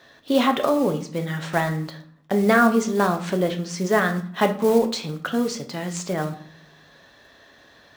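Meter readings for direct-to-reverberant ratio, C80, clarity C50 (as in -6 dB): 5.5 dB, 16.0 dB, 12.0 dB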